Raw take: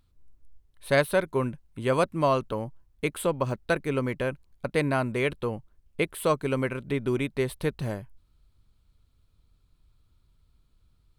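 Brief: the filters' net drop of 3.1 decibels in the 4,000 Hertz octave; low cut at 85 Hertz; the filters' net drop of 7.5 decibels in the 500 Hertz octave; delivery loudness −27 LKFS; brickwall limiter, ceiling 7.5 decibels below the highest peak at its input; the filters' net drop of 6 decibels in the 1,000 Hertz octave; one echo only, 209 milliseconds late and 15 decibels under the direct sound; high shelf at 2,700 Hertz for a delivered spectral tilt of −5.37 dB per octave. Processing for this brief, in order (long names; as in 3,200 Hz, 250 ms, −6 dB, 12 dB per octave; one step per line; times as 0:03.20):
high-pass filter 85 Hz
parametric band 500 Hz −8 dB
parametric band 1,000 Hz −5.5 dB
high-shelf EQ 2,700 Hz +5 dB
parametric band 4,000 Hz −7.5 dB
brickwall limiter −20 dBFS
single-tap delay 209 ms −15 dB
level +6.5 dB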